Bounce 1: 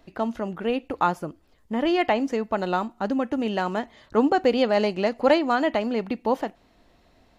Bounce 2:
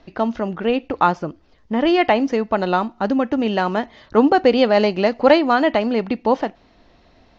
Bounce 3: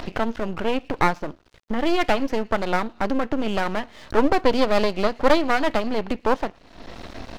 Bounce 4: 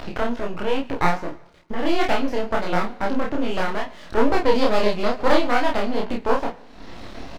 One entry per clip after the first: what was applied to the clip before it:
Butterworth low-pass 6,200 Hz 48 dB per octave; level +6 dB
upward compression, threshold −16 dBFS; delay with a high-pass on its return 112 ms, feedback 51%, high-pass 2,100 Hz, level −23 dB; half-wave rectification
dense smooth reverb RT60 0.97 s, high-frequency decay 0.9×, DRR 16 dB; chorus effect 2.3 Hz, delay 16.5 ms, depth 8 ms; double-tracking delay 29 ms −2.5 dB; level +1 dB

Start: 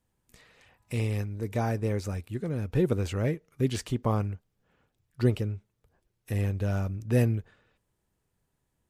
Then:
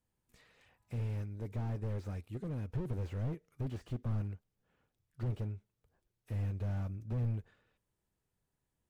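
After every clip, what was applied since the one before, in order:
slew-rate limiting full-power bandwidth 9.7 Hz
level −7.5 dB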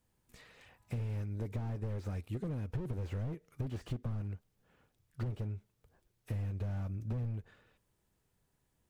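downward compressor, threshold −41 dBFS, peak gain reduction 11 dB
level +7 dB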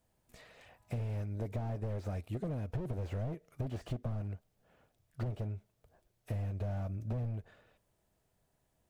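parametric band 650 Hz +10 dB 0.46 octaves

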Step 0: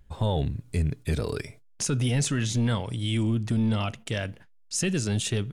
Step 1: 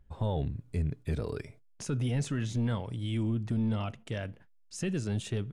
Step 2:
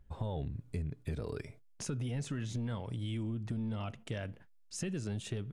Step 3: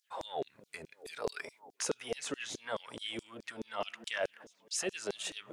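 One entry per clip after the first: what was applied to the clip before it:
high-shelf EQ 2,500 Hz −10 dB; level −5 dB
downward compressor, threshold −34 dBFS, peak gain reduction 7.5 dB
echo through a band-pass that steps 332 ms, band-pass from 210 Hz, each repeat 0.7 octaves, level −11 dB; auto-filter high-pass saw down 4.7 Hz 390–6,100 Hz; level +6.5 dB

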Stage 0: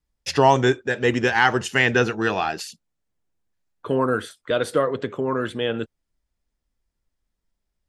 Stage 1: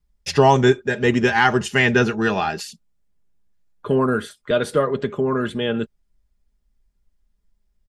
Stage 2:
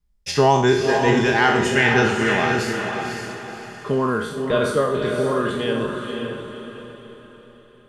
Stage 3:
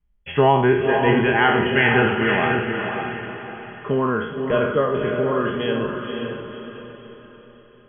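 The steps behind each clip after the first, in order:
low-shelf EQ 170 Hz +10.5 dB; comb filter 4.9 ms, depth 47%
peak hold with a decay on every bin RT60 0.64 s; feedback delay with all-pass diffusion 526 ms, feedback 41%, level −4.5 dB; level −3 dB
linear-phase brick-wall low-pass 3,400 Hz

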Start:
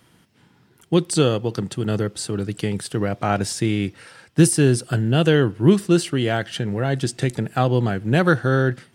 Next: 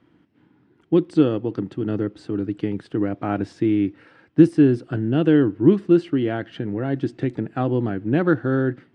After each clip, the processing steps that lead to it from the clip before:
low-pass filter 2,400 Hz 12 dB per octave
parametric band 300 Hz +13.5 dB 0.54 octaves
level −6 dB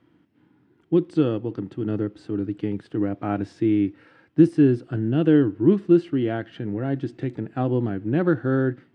harmonic and percussive parts rebalanced harmonic +5 dB
level −5.5 dB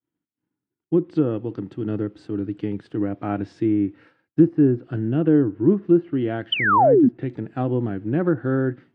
sound drawn into the spectrogram fall, 0:06.52–0:07.09, 220–3,200 Hz −14 dBFS
downward expander −44 dBFS
treble cut that deepens with the level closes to 1,300 Hz, closed at −15 dBFS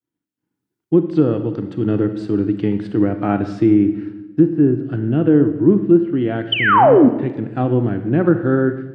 automatic gain control gain up to 9.5 dB
convolution reverb RT60 1.1 s, pre-delay 32 ms, DRR 9 dB
level −1 dB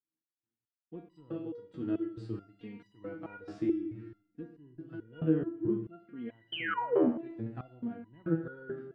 step-sequenced resonator 4.6 Hz 80–980 Hz
level −7 dB

